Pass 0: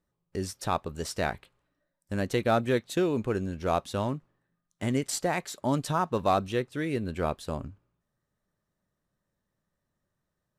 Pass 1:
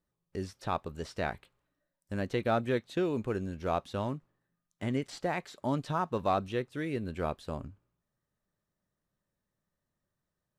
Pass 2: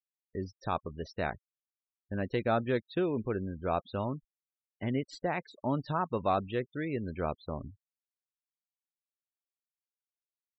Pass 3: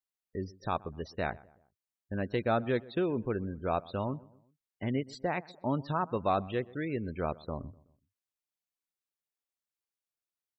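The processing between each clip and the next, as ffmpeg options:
ffmpeg -i in.wav -filter_complex "[0:a]acrossover=split=4500[link_01][link_02];[link_02]acompressor=threshold=-54dB:ratio=4:attack=1:release=60[link_03];[link_01][link_03]amix=inputs=2:normalize=0,volume=-4dB" out.wav
ffmpeg -i in.wav -af "afftfilt=real='re*gte(hypot(re,im),0.00794)':imag='im*gte(hypot(re,im),0.00794)':win_size=1024:overlap=0.75" out.wav
ffmpeg -i in.wav -filter_complex "[0:a]asplit=2[link_01][link_02];[link_02]adelay=125,lowpass=frequency=1500:poles=1,volume=-21dB,asplit=2[link_03][link_04];[link_04]adelay=125,lowpass=frequency=1500:poles=1,volume=0.46,asplit=2[link_05][link_06];[link_06]adelay=125,lowpass=frequency=1500:poles=1,volume=0.46[link_07];[link_01][link_03][link_05][link_07]amix=inputs=4:normalize=0" out.wav

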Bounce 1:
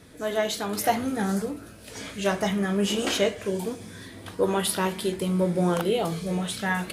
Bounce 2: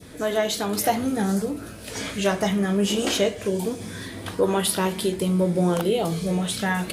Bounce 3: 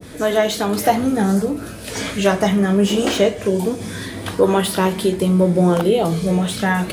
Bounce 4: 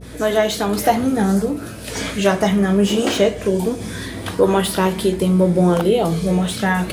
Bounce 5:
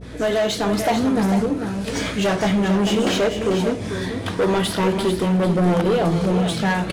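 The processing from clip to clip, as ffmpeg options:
ffmpeg -i in.wav -filter_complex "[0:a]adynamicequalizer=threshold=0.00891:dfrequency=1500:dqfactor=0.76:tfrequency=1500:tqfactor=0.76:attack=5:release=100:ratio=0.375:range=2.5:mode=cutabove:tftype=bell,asplit=2[link_01][link_02];[link_02]acompressor=threshold=-32dB:ratio=6,volume=2dB[link_03];[link_01][link_03]amix=inputs=2:normalize=0" out.wav
ffmpeg -i in.wav -filter_complex "[0:a]acrossover=split=160|3200[link_01][link_02][link_03];[link_03]asoftclip=type=tanh:threshold=-26.5dB[link_04];[link_01][link_02][link_04]amix=inputs=3:normalize=0,adynamicequalizer=threshold=0.01:dfrequency=2000:dqfactor=0.7:tfrequency=2000:tqfactor=0.7:attack=5:release=100:ratio=0.375:range=2:mode=cutabove:tftype=highshelf,volume=6.5dB" out.wav
ffmpeg -i in.wav -af "aeval=exprs='val(0)+0.0126*(sin(2*PI*60*n/s)+sin(2*PI*2*60*n/s)/2+sin(2*PI*3*60*n/s)/3+sin(2*PI*4*60*n/s)/4+sin(2*PI*5*60*n/s)/5)':channel_layout=same" out.wav
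ffmpeg -i in.wav -af "asoftclip=type=hard:threshold=-15.5dB,adynamicsmooth=sensitivity=3.5:basefreq=6200,aecho=1:1:443:0.398" out.wav

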